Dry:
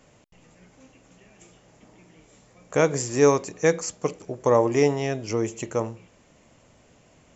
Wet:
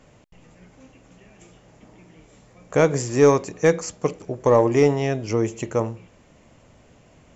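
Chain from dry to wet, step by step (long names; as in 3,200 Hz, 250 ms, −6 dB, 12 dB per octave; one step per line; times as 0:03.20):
high-shelf EQ 5,200 Hz −6.5 dB
in parallel at −8 dB: hard clipping −13.5 dBFS, distortion −14 dB
on the sum: low-shelf EQ 130 Hz +4.5 dB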